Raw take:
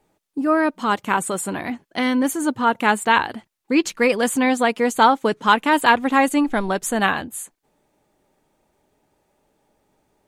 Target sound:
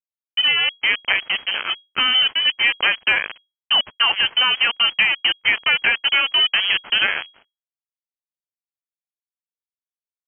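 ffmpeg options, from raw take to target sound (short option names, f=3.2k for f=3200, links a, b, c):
-af "acompressor=threshold=-17dB:ratio=20,aeval=exprs='sgn(val(0))*max(abs(val(0))-0.00335,0)':c=same,acrusher=bits=3:mix=0:aa=0.5,lowpass=f=2.8k:t=q:w=0.5098,lowpass=f=2.8k:t=q:w=0.6013,lowpass=f=2.8k:t=q:w=0.9,lowpass=f=2.8k:t=q:w=2.563,afreqshift=-3300,volume=4dB"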